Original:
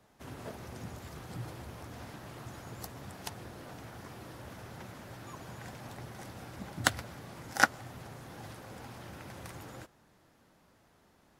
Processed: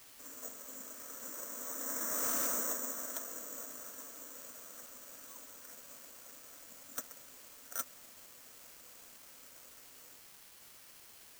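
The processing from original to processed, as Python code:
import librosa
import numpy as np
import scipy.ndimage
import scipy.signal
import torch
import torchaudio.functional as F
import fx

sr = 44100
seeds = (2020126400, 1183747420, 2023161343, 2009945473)

y = fx.doppler_pass(x, sr, speed_mps=21, closest_m=3.6, pass_at_s=2.37)
y = scipy.signal.sosfilt(scipy.signal.butter(8, 250.0, 'highpass', fs=sr, output='sos'), y)
y = fx.fixed_phaser(y, sr, hz=540.0, stages=8)
y = fx.quant_dither(y, sr, seeds[0], bits=12, dither='triangular')
y = (np.kron(scipy.signal.resample_poly(y, 1, 6), np.eye(6)[0]) * 6)[:len(y)]
y = np.clip(y, -10.0 ** (-38.5 / 20.0), 10.0 ** (-38.5 / 20.0))
y = F.gain(torch.from_numpy(y), 15.5).numpy()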